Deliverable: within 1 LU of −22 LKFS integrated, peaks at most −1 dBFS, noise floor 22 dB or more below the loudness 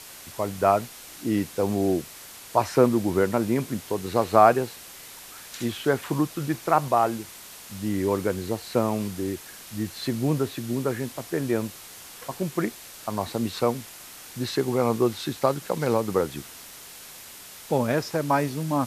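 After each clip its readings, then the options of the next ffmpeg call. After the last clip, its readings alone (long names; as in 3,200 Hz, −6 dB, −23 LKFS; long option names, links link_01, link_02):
background noise floor −44 dBFS; target noise floor −48 dBFS; integrated loudness −25.5 LKFS; sample peak −4.0 dBFS; target loudness −22.0 LKFS
→ -af "afftdn=noise_reduction=6:noise_floor=-44"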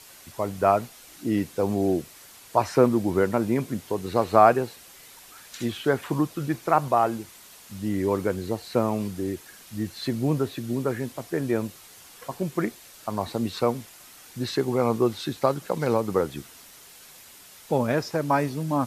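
background noise floor −49 dBFS; integrated loudness −26.0 LKFS; sample peak −4.0 dBFS; target loudness −22.0 LKFS
→ -af "volume=4dB,alimiter=limit=-1dB:level=0:latency=1"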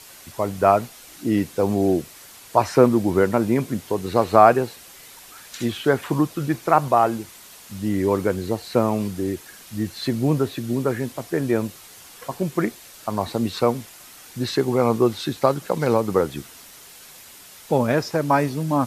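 integrated loudness −22.0 LKFS; sample peak −1.0 dBFS; background noise floor −45 dBFS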